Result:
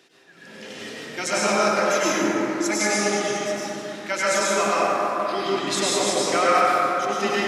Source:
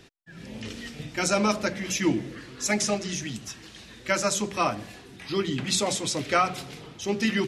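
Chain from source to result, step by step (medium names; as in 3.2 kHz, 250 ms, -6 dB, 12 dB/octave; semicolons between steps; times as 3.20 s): high-pass 340 Hz 12 dB/octave; plate-style reverb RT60 4.1 s, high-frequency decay 0.3×, pre-delay 85 ms, DRR -9 dB; trim -2 dB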